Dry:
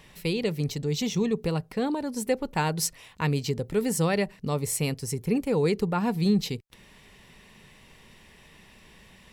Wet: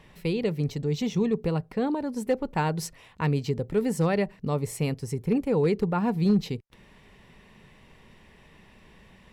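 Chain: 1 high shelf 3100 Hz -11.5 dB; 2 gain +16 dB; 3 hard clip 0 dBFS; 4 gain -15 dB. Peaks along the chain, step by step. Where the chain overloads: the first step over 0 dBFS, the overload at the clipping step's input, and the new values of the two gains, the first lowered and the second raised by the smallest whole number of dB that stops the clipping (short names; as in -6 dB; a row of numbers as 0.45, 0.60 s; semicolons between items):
-13.0, +3.0, 0.0, -15.0 dBFS; step 2, 3.0 dB; step 2 +13 dB, step 4 -12 dB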